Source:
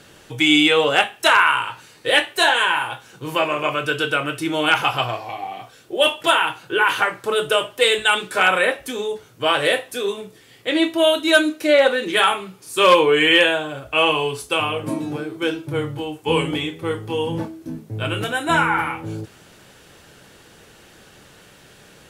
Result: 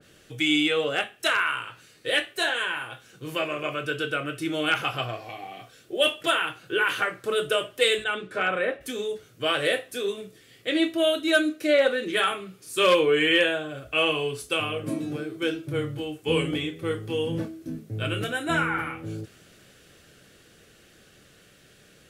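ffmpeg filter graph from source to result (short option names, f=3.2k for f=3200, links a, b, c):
-filter_complex "[0:a]asettb=1/sr,asplit=3[a][b][c];[a]atrim=end=8.044[d];[b]atrim=start=8.04:end=8.81,asetpts=PTS-STARTPTS,afade=t=in:d=0.004:c=qsin,afade=t=out:st=0.766:d=0.004:c=qsin,lowpass=f=1.4k:p=1,equalizer=f=93:t=o:w=0.44:g=5[e];[c]atrim=start=8.806[f];[d][e]acrossfade=d=0.004:c1=hsin:c2=qsin[g];[g][f]acrossfade=d=0.004:c1=qsin:c2=hsin,equalizer=f=910:t=o:w=0.38:g=-14.5,dynaudnorm=f=250:g=31:m=11.5dB,adynamicequalizer=threshold=0.0355:dfrequency=2000:dqfactor=0.7:tfrequency=2000:tqfactor=0.7:attack=5:release=100:ratio=0.375:range=2.5:mode=cutabove:tftype=highshelf,volume=-7dB"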